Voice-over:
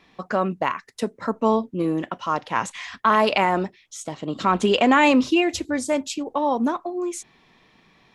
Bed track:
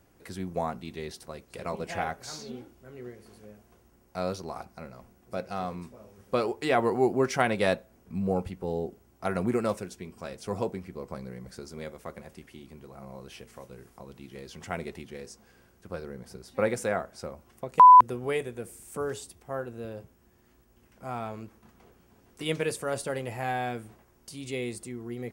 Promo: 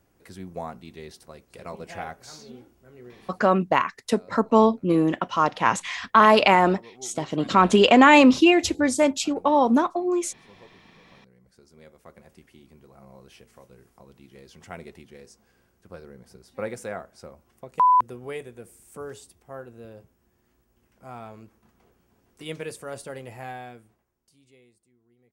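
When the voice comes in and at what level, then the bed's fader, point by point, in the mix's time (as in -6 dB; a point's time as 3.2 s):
3.10 s, +3.0 dB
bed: 3.3 s -3.5 dB
3.81 s -21.5 dB
11 s -21.5 dB
12.34 s -5 dB
23.42 s -5 dB
24.81 s -28 dB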